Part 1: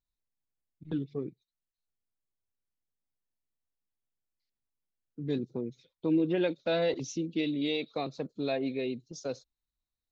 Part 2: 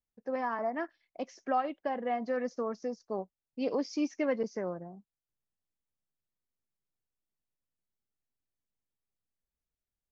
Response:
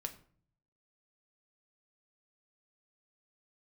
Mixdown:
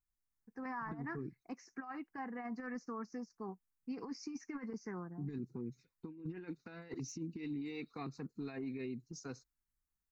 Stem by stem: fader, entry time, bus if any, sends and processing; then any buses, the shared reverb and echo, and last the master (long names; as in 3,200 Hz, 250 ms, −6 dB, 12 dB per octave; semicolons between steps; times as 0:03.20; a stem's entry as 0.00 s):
−3.0 dB, 0.00 s, no send, de-essing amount 100%
−3.5 dB, 0.30 s, no send, no processing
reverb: not used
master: compressor whose output falls as the input rises −35 dBFS, ratio −0.5; phaser with its sweep stopped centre 1,400 Hz, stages 4; brickwall limiter −34 dBFS, peak gain reduction 6.5 dB